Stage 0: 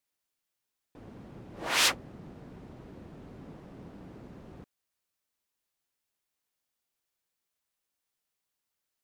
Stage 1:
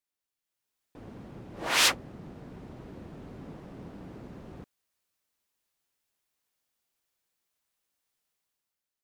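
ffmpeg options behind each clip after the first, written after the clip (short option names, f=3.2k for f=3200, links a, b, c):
-af "dynaudnorm=f=140:g=9:m=9dB,volume=-6dB"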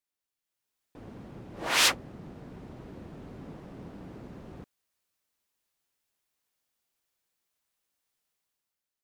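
-af anull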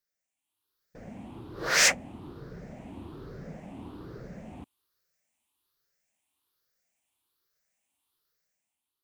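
-af "afftfilt=real='re*pow(10,12/40*sin(2*PI*(0.58*log(max(b,1)*sr/1024/100)/log(2)-(1.2)*(pts-256)/sr)))':imag='im*pow(10,12/40*sin(2*PI*(0.58*log(max(b,1)*sr/1024/100)/log(2)-(1.2)*(pts-256)/sr)))':win_size=1024:overlap=0.75"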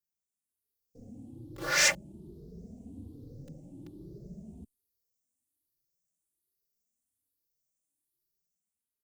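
-filter_complex "[0:a]acrossover=split=140|480|5200[a][b][c][d];[c]acrusher=bits=6:mix=0:aa=0.000001[e];[a][b][e][d]amix=inputs=4:normalize=0,asplit=2[f][g];[g]adelay=2.9,afreqshift=0.48[h];[f][h]amix=inputs=2:normalize=1"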